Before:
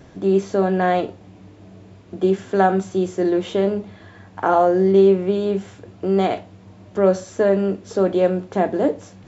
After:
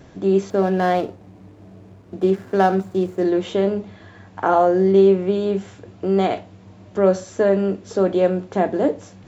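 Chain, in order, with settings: 0.5–3.25 median filter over 15 samples

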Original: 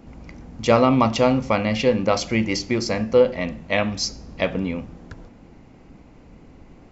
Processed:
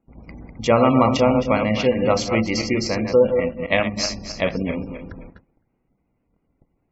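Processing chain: regenerating reverse delay 0.131 s, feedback 53%, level -6 dB; 3.32–3.97 transient shaper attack +4 dB, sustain -6 dB; spectral gate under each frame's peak -30 dB strong; gate -39 dBFS, range -24 dB; ending taper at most 450 dB/s

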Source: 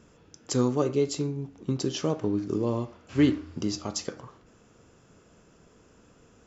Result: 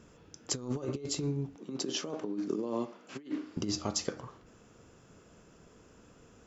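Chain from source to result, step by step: negative-ratio compressor -29 dBFS, ratio -0.5; 1.56–3.57 HPF 190 Hz 24 dB/oct; gain -4 dB

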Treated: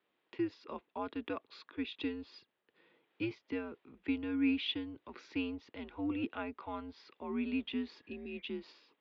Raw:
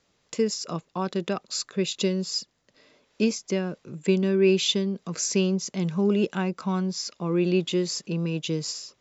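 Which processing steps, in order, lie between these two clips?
spectral repair 8.06–8.39, 900–2500 Hz; mistuned SSB -110 Hz 350–3500 Hz; gain -8.5 dB

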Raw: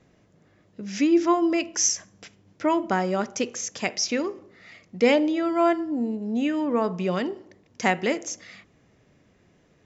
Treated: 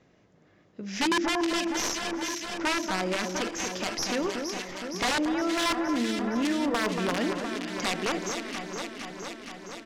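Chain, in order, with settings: tracing distortion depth 0.082 ms; wrapped overs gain 16 dB; LPF 6300 Hz 12 dB/oct; echo with dull and thin repeats by turns 0.233 s, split 1700 Hz, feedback 84%, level -7.5 dB; 5.57–7.88 one-sided clip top -20 dBFS, bottom -15.5 dBFS; echo 0.394 s -23.5 dB; limiter -19 dBFS, peak gain reduction 6.5 dB; low shelf 150 Hz -7 dB

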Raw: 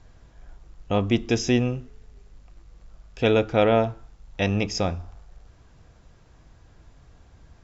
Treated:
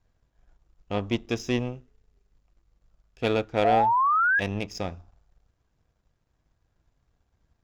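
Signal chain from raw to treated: power-law curve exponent 1.4; painted sound rise, 3.64–4.4, 670–1700 Hz -19 dBFS; gain -2.5 dB

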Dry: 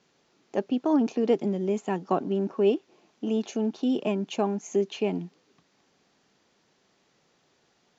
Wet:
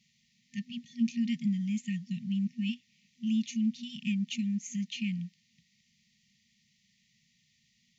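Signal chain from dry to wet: FFT band-reject 240–1800 Hz

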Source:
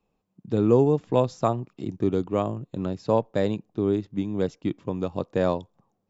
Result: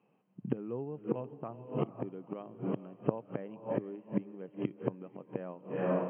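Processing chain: diffused feedback echo 0.456 s, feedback 42%, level -11 dB; flipped gate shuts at -20 dBFS, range -24 dB; FFT band-pass 110–3200 Hz; gain +4 dB

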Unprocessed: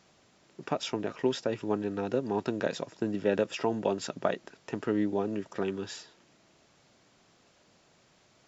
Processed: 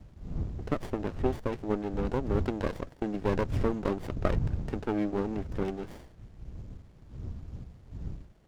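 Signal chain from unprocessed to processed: wind noise 100 Hz -36 dBFS; running maximum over 33 samples

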